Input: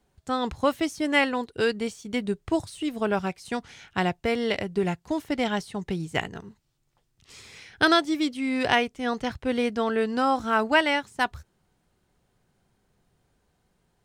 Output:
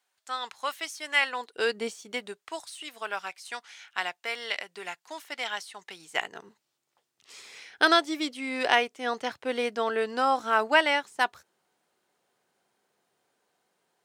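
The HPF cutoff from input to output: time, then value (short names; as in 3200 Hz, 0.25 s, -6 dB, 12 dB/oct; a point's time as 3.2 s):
1.16 s 1200 Hz
1.87 s 320 Hz
2.53 s 1100 Hz
5.94 s 1100 Hz
6.44 s 420 Hz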